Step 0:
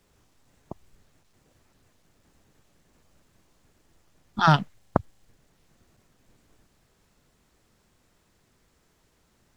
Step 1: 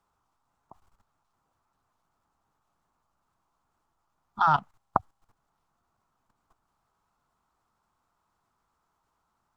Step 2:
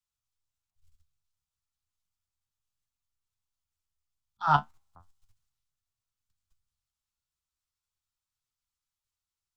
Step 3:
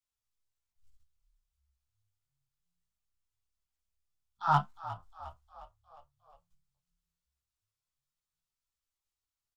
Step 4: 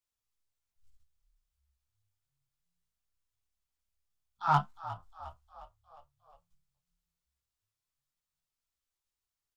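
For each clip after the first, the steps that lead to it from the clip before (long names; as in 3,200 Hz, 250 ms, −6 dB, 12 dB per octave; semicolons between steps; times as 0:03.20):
flat-topped bell 1,000 Hz +15 dB 1.2 octaves; notch filter 750 Hz, Q 17; output level in coarse steps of 14 dB; level −6.5 dB
flanger 0.35 Hz, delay 7.5 ms, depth 7.8 ms, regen +52%; volume swells 140 ms; multiband upward and downward expander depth 70%
gain into a clipping stage and back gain 12.5 dB; multi-voice chorus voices 4, 1 Hz, delay 18 ms, depth 3 ms; echo with shifted repeats 357 ms, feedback 54%, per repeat −35 Hz, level −14.5 dB
stylus tracing distortion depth 0.021 ms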